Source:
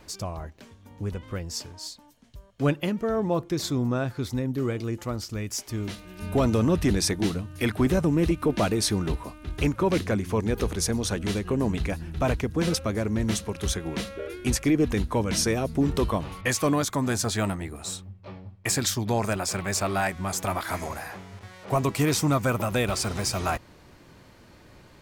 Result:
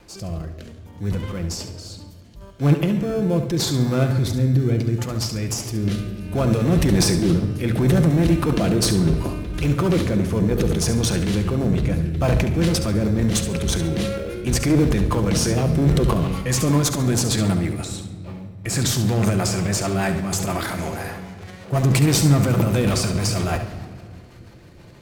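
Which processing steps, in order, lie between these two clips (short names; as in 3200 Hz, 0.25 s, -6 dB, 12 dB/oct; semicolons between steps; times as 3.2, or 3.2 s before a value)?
dynamic EQ 140 Hz, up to +5 dB, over -39 dBFS, Q 1.1; in parallel at -11 dB: sample-and-hold 23×; on the sum: rotary speaker horn 0.7 Hz, later 6.3 Hz, at 12.1; transient shaper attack -4 dB, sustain +9 dB; one-sided clip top -20.5 dBFS; on a send: flutter echo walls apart 11.9 m, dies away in 0.41 s; on the sum: shoebox room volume 3600 m³, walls mixed, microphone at 0.8 m; gain +3 dB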